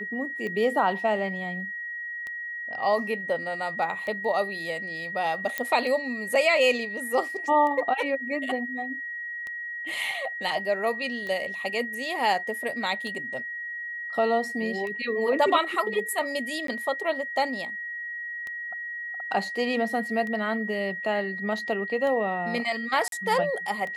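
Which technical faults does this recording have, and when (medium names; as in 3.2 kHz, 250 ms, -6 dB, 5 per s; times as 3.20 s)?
tick 33 1/3 rpm -23 dBFS
whine 1.9 kHz -32 dBFS
5.58 s: pop -12 dBFS
16.67–16.68 s: dropout 13 ms
23.08–23.12 s: dropout 42 ms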